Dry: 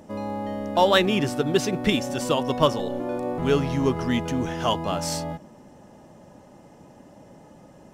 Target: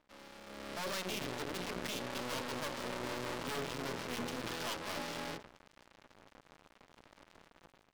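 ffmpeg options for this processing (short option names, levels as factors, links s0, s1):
-af "aresample=8000,aresample=44100,aresample=11025,aeval=exprs='max(val(0),0)':c=same,aresample=44100,highshelf=f=2100:g=-9.5,bandreject=f=60:t=h:w=6,bandreject=f=120:t=h:w=6,bandreject=f=180:t=h:w=6,bandreject=f=240:t=h:w=6,bandreject=f=300:t=h:w=6,bandreject=f=360:t=h:w=6,bandreject=f=420:t=h:w=6,bandreject=f=480:t=h:w=6,bandreject=f=540:t=h:w=6,crystalizer=i=7:c=0,alimiter=limit=0.178:level=0:latency=1:release=323,aeval=exprs='(tanh(178*val(0)+0.2)-tanh(0.2))/178':c=same,lowshelf=f=92:g=-11,bandreject=f=780:w=12,aeval=exprs='sgn(val(0))*max(abs(val(0))-0.00237,0)':c=same,dynaudnorm=f=430:g=3:m=5.31,volume=1.12"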